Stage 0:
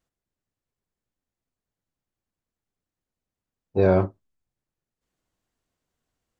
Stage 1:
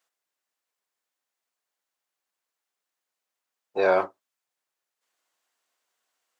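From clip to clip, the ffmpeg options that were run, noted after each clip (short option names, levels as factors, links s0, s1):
-af "highpass=780,volume=2.11"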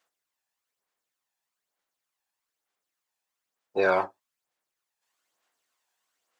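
-af "aphaser=in_gain=1:out_gain=1:delay=1.2:decay=0.45:speed=1.1:type=sinusoidal,volume=0.891"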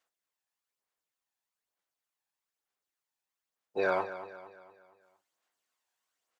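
-af "aecho=1:1:231|462|693|924|1155:0.224|0.103|0.0474|0.0218|0.01,volume=0.501"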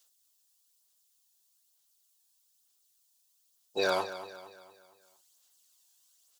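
-af "aexciter=amount=4.2:drive=8.7:freq=3100"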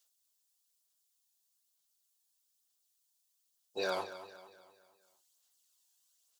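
-af "flanger=delay=4.9:depth=9.4:regen=-57:speed=1.8:shape=sinusoidal,volume=0.75"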